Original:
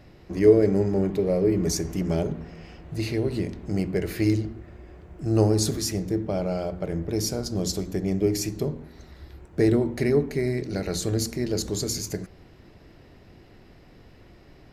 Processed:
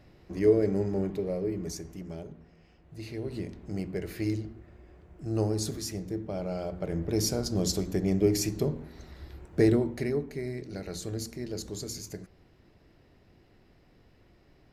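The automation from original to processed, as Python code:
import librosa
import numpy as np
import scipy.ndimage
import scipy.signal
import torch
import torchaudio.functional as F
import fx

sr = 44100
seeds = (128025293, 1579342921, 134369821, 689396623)

y = fx.gain(x, sr, db=fx.line((1.01, -6.0), (2.24, -16.0), (2.78, -16.0), (3.38, -8.0), (6.28, -8.0), (7.19, -1.0), (9.6, -1.0), (10.22, -9.5)))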